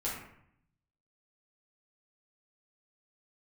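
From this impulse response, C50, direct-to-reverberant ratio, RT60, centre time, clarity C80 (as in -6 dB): 2.5 dB, -8.0 dB, 0.70 s, 49 ms, 6.0 dB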